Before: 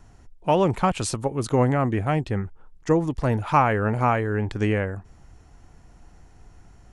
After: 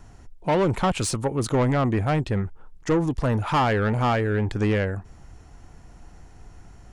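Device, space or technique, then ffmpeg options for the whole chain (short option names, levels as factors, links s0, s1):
saturation between pre-emphasis and de-emphasis: -af "highshelf=f=7300:g=7.5,asoftclip=type=tanh:threshold=0.106,highshelf=f=7300:g=-7.5,volume=1.5"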